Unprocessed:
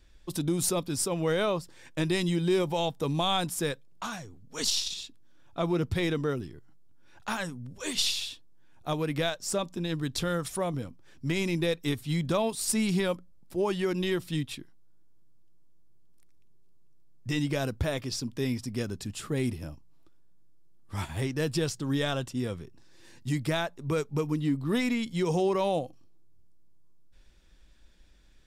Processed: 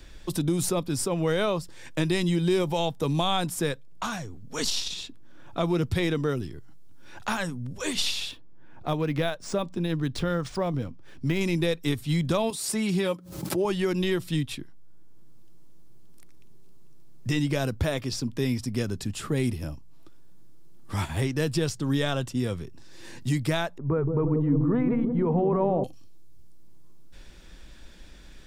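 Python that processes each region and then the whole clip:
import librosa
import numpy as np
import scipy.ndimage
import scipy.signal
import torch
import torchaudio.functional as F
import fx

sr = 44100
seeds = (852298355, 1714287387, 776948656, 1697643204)

y = fx.chain(x, sr, fx.high_shelf(hz=3300.0, db=-7.0),
    fx.resample_linear(factor=3), at=(8.31, 11.41))
y = fx.chain(y, sr, fx.highpass(hz=170.0, slope=12),
    fx.notch_comb(f0_hz=240.0),
    fx.pre_swell(db_per_s=76.0), at=(12.5, 13.65))
y = fx.chain(y, sr, fx.lowpass(hz=1300.0, slope=24),
    fx.echo_wet_lowpass(ms=172, feedback_pct=59, hz=560.0, wet_db=-5.0),
    fx.sustainer(db_per_s=29.0), at=(23.78, 25.84))
y = fx.low_shelf(y, sr, hz=91.0, db=6.0)
y = fx.band_squash(y, sr, depth_pct=40)
y = y * librosa.db_to_amplitude(2.0)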